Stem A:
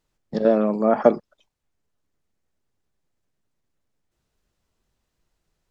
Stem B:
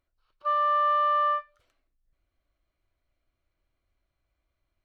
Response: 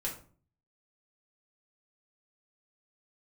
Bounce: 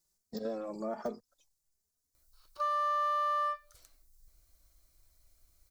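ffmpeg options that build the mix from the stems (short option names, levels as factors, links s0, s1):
-filter_complex "[0:a]deesser=0.95,asplit=2[s0][s1];[s1]adelay=3,afreqshift=1.2[s2];[s0][s2]amix=inputs=2:normalize=1,volume=0.355[s3];[1:a]adelay=2150,volume=1.41[s4];[s3][s4]amix=inputs=2:normalize=0,asubboost=boost=2.5:cutoff=110,aexciter=amount=3.6:drive=9.3:freq=4300,acompressor=threshold=0.0126:ratio=2"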